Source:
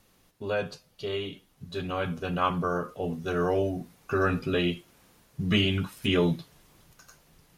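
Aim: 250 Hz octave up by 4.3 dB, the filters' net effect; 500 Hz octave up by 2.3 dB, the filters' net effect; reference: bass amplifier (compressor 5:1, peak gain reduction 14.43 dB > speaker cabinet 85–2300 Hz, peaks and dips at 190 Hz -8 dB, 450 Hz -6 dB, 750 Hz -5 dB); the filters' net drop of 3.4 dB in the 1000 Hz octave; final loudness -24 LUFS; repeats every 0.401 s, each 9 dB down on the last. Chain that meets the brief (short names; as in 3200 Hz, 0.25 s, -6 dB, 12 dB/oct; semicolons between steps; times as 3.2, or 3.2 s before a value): bell 250 Hz +8 dB; bell 500 Hz +5.5 dB; bell 1000 Hz -4.5 dB; feedback echo 0.401 s, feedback 35%, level -9 dB; compressor 5:1, threshold -29 dBFS; speaker cabinet 85–2300 Hz, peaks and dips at 190 Hz -8 dB, 450 Hz -6 dB, 750 Hz -5 dB; gain +12.5 dB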